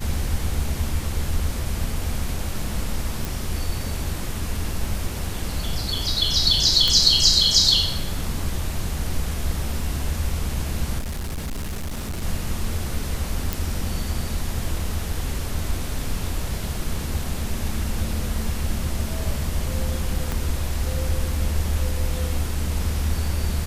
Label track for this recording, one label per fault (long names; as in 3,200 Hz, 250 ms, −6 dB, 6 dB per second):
3.250000	3.250000	click
6.880000	6.880000	click −6 dBFS
10.980000	12.230000	clipping −25 dBFS
13.530000	13.530000	click
20.320000	20.320000	click